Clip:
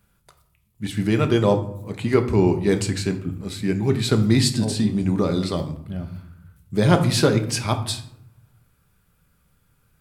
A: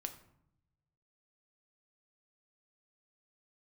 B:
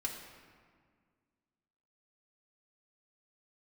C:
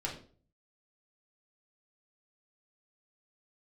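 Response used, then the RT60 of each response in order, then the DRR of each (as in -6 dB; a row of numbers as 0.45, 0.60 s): A; 0.75, 1.9, 0.45 s; 6.0, -2.5, -3.0 dB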